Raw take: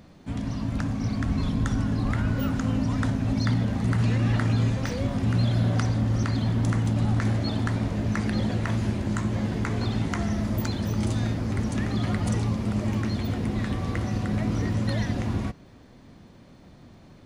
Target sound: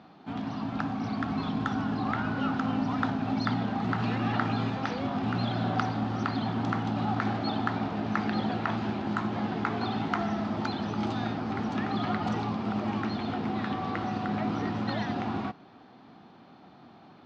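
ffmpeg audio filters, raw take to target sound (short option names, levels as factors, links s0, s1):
-af "acrusher=bits=7:mode=log:mix=0:aa=0.000001,highpass=210,equalizer=f=540:t=q:w=4:g=-7,equalizer=f=780:t=q:w=4:g=10,equalizer=f=1300:t=q:w=4:g=6,equalizer=f=2000:t=q:w=4:g=-4,lowpass=f=4300:w=0.5412,lowpass=f=4300:w=1.3066"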